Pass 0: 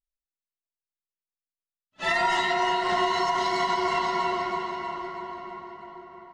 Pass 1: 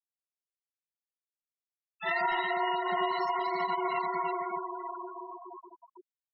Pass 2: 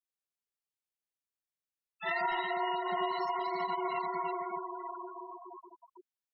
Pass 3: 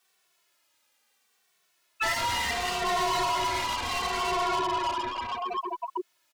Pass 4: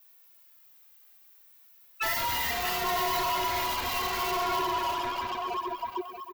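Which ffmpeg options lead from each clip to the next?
ffmpeg -i in.wav -filter_complex "[0:a]afftfilt=real='re*gte(hypot(re,im),0.0631)':imag='im*gte(hypot(re,im),0.0631)':win_size=1024:overlap=0.75,acrossover=split=120|420|3500[link_01][link_02][link_03][link_04];[link_04]alimiter=level_in=18dB:limit=-24dB:level=0:latency=1:release=364,volume=-18dB[link_05];[link_01][link_02][link_03][link_05]amix=inputs=4:normalize=0,volume=-5dB" out.wav
ffmpeg -i in.wav -af "adynamicequalizer=threshold=0.00631:dfrequency=1700:dqfactor=1.9:tfrequency=1700:tqfactor=1.9:attack=5:release=100:ratio=0.375:range=2:mode=cutabove:tftype=bell,volume=-2.5dB" out.wav
ffmpeg -i in.wav -filter_complex "[0:a]asplit=2[link_01][link_02];[link_02]highpass=frequency=720:poles=1,volume=30dB,asoftclip=type=tanh:threshold=-21.5dB[link_03];[link_01][link_03]amix=inputs=2:normalize=0,lowpass=frequency=4800:poles=1,volume=-6dB,acrossover=split=130|3000[link_04][link_05][link_06];[link_05]acompressor=threshold=-35dB:ratio=3[link_07];[link_04][link_07][link_06]amix=inputs=3:normalize=0,asplit=2[link_08][link_09];[link_09]adelay=2.2,afreqshift=-0.71[link_10];[link_08][link_10]amix=inputs=2:normalize=1,volume=8dB" out.wav
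ffmpeg -i in.wav -af "aexciter=amount=8.8:drive=3.7:freq=12000,asoftclip=type=tanh:threshold=-23dB,aecho=1:1:633|1266:0.355|0.0532" out.wav

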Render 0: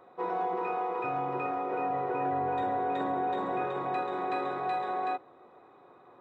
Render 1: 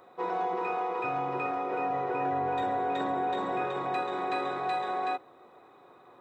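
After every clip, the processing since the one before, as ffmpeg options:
ffmpeg -i in.wav -af "highshelf=frequency=3100:gain=10" out.wav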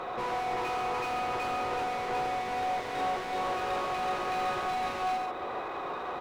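ffmpeg -i in.wav -filter_complex "[0:a]acompressor=threshold=-43dB:ratio=1.5,asplit=2[link_01][link_02];[link_02]highpass=frequency=720:poles=1,volume=33dB,asoftclip=type=tanh:threshold=-26dB[link_03];[link_01][link_03]amix=inputs=2:normalize=0,lowpass=frequency=2100:poles=1,volume=-6dB,aecho=1:1:84.55|139.9:0.501|0.398,volume=-1dB" out.wav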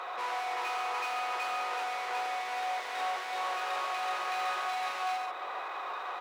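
ffmpeg -i in.wav -af "highpass=870,volume=1.5dB" out.wav

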